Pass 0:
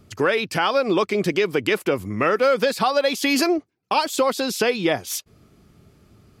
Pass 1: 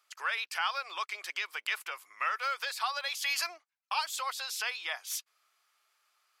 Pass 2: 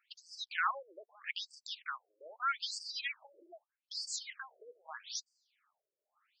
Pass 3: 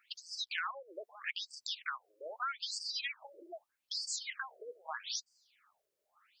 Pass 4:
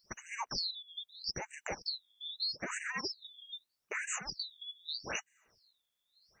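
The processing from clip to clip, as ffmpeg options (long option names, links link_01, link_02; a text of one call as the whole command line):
ffmpeg -i in.wav -af "highpass=frequency=980:width=0.5412,highpass=frequency=980:width=1.3066,volume=-8dB" out.wav
ffmpeg -i in.wav -af "aeval=exprs='if(lt(val(0),0),0.708*val(0),val(0))':channel_layout=same,afftfilt=real='re*between(b*sr/1024,420*pow(6400/420,0.5+0.5*sin(2*PI*0.8*pts/sr))/1.41,420*pow(6400/420,0.5+0.5*sin(2*PI*0.8*pts/sr))*1.41)':imag='im*between(b*sr/1024,420*pow(6400/420,0.5+0.5*sin(2*PI*0.8*pts/sr))/1.41,420*pow(6400/420,0.5+0.5*sin(2*PI*0.8*pts/sr))*1.41)':win_size=1024:overlap=0.75,volume=2.5dB" out.wav
ffmpeg -i in.wav -af "acompressor=threshold=-42dB:ratio=10,volume=7dB" out.wav
ffmpeg -i in.wav -af "afftfilt=real='real(if(lt(b,272),68*(eq(floor(b/68),0)*2+eq(floor(b/68),1)*3+eq(floor(b/68),2)*0+eq(floor(b/68),3)*1)+mod(b,68),b),0)':imag='imag(if(lt(b,272),68*(eq(floor(b/68),0)*2+eq(floor(b/68),1)*3+eq(floor(b/68),2)*0+eq(floor(b/68),3)*1)+mod(b,68),b),0)':win_size=2048:overlap=0.75,volume=1dB" out.wav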